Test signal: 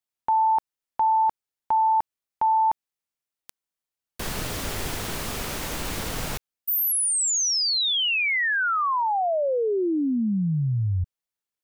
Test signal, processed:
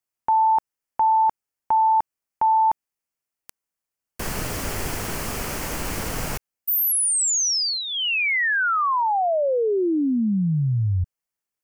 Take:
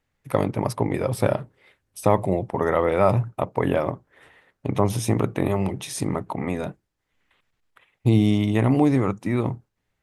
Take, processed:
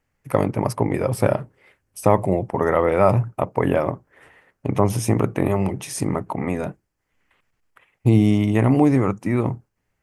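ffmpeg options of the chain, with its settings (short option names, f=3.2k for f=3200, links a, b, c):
-af "equalizer=f=3.7k:w=3.5:g=-9.5,volume=2.5dB"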